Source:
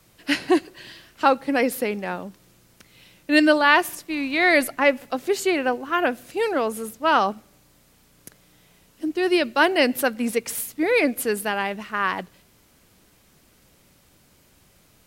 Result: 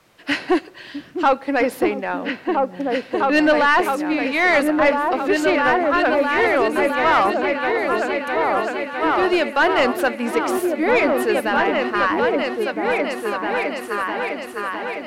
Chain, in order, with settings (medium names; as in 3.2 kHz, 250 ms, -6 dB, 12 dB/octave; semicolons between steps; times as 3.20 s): delay with an opening low-pass 657 ms, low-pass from 200 Hz, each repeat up 2 oct, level 0 dB; overdrive pedal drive 17 dB, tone 1.6 kHz, clips at -2 dBFS; trim -2.5 dB